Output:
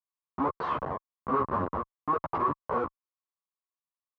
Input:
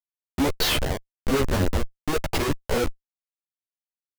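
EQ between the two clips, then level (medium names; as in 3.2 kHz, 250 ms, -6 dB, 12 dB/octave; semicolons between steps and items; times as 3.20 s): high-pass 120 Hz 12 dB/octave; resonant low-pass 1.1 kHz, resonance Q 8.7; -8.5 dB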